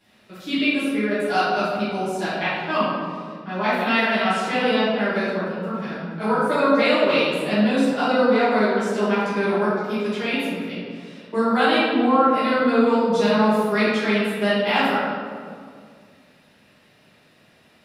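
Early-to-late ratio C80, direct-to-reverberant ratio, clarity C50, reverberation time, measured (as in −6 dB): 0.5 dB, −13.5 dB, −2.5 dB, 2.1 s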